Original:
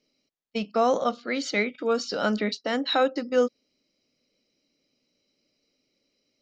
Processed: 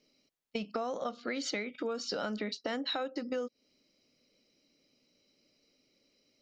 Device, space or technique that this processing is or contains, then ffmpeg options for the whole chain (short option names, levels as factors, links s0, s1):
serial compression, peaks first: -af "acompressor=threshold=0.0316:ratio=6,acompressor=threshold=0.0141:ratio=2,volume=1.26"